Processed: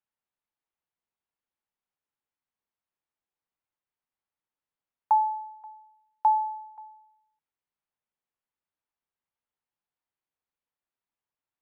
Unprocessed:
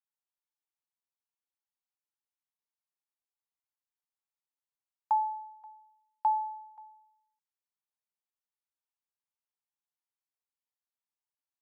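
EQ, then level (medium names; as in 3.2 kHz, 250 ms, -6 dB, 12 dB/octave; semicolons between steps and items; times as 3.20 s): distance through air 370 m; +7.0 dB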